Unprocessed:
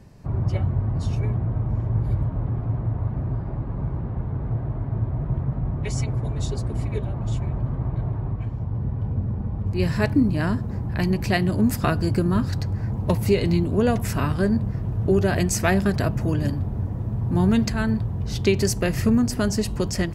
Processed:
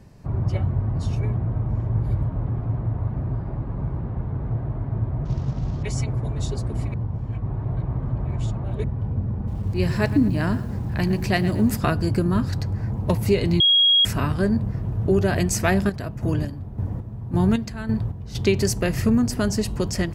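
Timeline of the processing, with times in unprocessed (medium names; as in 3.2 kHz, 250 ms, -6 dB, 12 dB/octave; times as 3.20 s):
5.25–5.83 s: CVSD coder 32 kbps
6.94–8.84 s: reverse
9.36–11.77 s: bit-crushed delay 113 ms, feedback 35%, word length 7-bit, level -14 dB
13.60–14.05 s: bleep 3.29 kHz -13 dBFS
15.67–18.35 s: square tremolo 1.8 Hz, depth 60%, duty 40%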